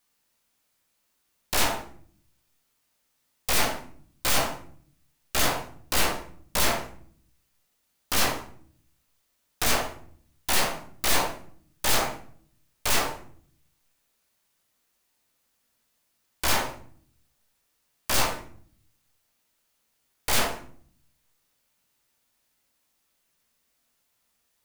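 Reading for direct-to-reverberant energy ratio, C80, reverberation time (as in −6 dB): 2.0 dB, 13.0 dB, non-exponential decay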